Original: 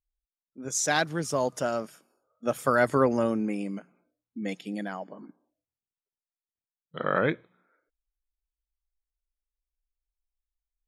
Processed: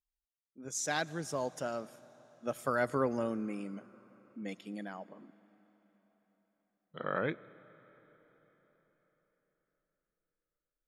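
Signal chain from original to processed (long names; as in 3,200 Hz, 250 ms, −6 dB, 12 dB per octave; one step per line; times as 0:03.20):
comb and all-pass reverb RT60 4.7 s, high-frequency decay 0.9×, pre-delay 45 ms, DRR 19.5 dB
level −8.5 dB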